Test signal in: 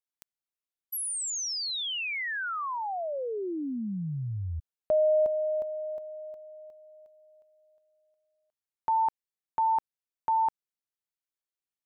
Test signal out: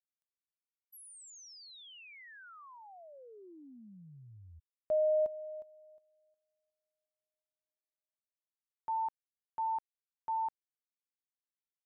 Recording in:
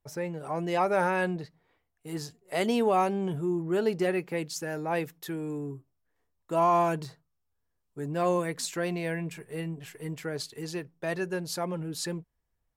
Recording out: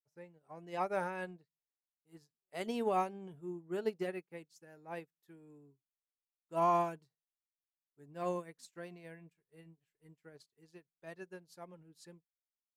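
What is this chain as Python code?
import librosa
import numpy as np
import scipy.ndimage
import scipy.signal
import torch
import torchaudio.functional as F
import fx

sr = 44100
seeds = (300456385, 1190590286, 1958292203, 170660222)

y = fx.upward_expand(x, sr, threshold_db=-45.0, expansion=2.5)
y = F.gain(torch.from_numpy(y), -5.5).numpy()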